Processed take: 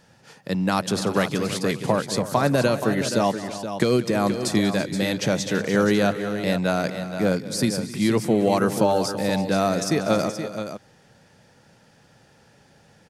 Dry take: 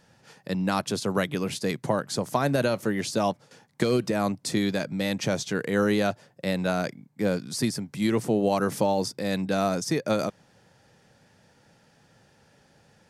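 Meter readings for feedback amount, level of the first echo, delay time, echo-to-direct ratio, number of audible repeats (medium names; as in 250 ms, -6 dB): no regular repeats, -16.5 dB, 189 ms, -7.5 dB, 4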